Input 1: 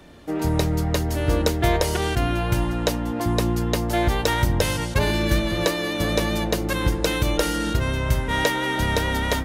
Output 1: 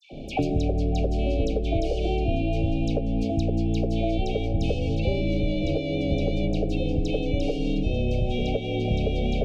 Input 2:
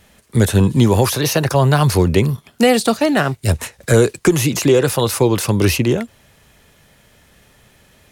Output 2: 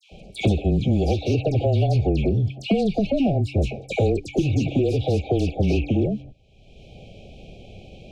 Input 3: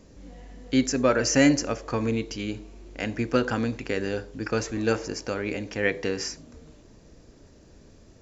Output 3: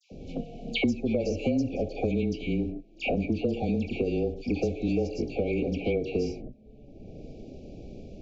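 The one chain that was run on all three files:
de-hum 156.2 Hz, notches 2; gate -40 dBFS, range -21 dB; treble shelf 3.1 kHz -8.5 dB; compression 1.5:1, threshold -26 dBFS; saturation -15.5 dBFS; frequency shift -23 Hz; brick-wall FIR band-stop 820–2200 Hz; distance through air 160 m; phase dispersion lows, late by 110 ms, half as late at 1.7 kHz; three bands compressed up and down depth 100%; trim +2 dB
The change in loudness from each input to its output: -3.5 LU, -6.5 LU, -3.0 LU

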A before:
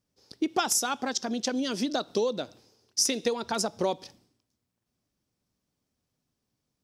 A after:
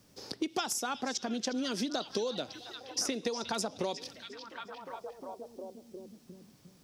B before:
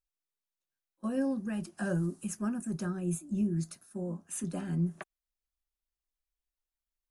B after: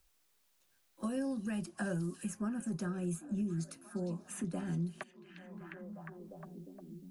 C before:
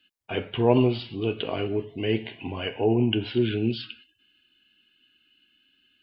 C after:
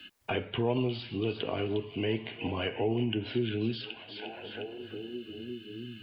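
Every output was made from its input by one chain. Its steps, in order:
in parallel at -2 dB: compression, threshold -32 dBFS; on the sum: repeats whose band climbs or falls 355 ms, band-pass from 3.7 kHz, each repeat -0.7 oct, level -9.5 dB; three bands compressed up and down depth 70%; trim -7.5 dB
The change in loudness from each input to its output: -7.5 LU, -4.5 LU, -7.5 LU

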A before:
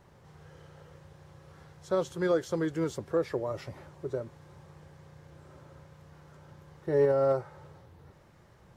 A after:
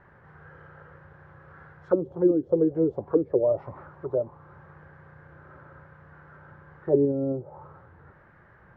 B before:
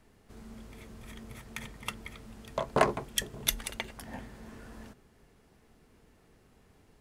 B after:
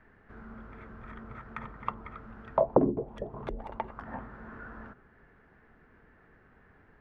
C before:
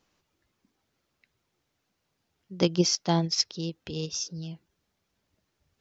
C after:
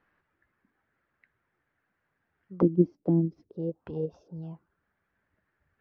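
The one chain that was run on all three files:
touch-sensitive low-pass 290–1700 Hz down, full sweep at -23.5 dBFS; peak normalisation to -9 dBFS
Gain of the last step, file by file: +1.0 dB, +0.5 dB, -2.5 dB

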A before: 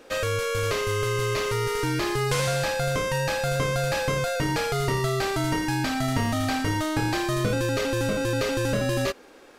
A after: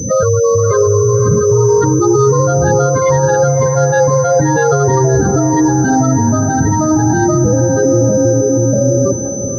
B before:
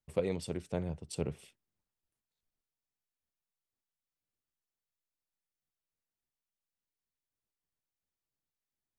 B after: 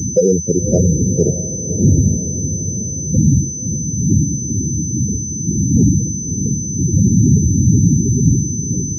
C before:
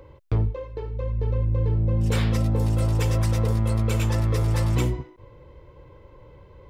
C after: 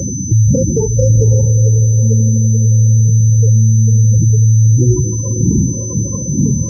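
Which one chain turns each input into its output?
dead-time distortion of 0.17 ms; wind noise 180 Hz -34 dBFS; high-pass 78 Hz 24 dB/octave; spectral gate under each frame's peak -10 dB strong; dynamic bell 1.4 kHz, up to +7 dB, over -50 dBFS, Q 2.9; compression, threshold -28 dBFS; peak limiter -27 dBFS; on a send: echo that smears into a reverb 565 ms, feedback 52%, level -10 dB; on the sum: class-D stage that switches slowly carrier 6.1 kHz; peak normalisation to -1.5 dBFS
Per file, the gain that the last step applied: +22.0 dB, +23.0 dB, +22.0 dB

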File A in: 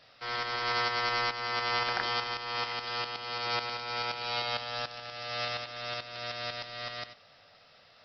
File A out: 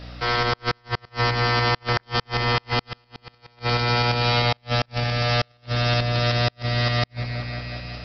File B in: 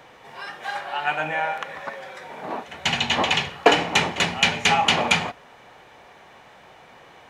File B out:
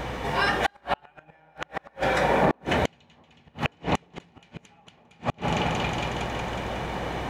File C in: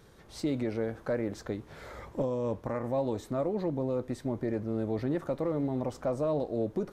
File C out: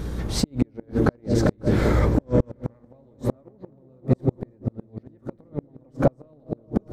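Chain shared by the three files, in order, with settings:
bass shelf 360 Hz +10.5 dB; compression 5:1, threshold -31 dBFS; delay with an opening low-pass 183 ms, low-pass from 400 Hz, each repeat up 1 oct, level -3 dB; hum 60 Hz, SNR 17 dB; inverted gate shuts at -23 dBFS, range -38 dB; peak normalisation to -6 dBFS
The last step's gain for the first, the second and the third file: +13.0 dB, +12.5 dB, +16.5 dB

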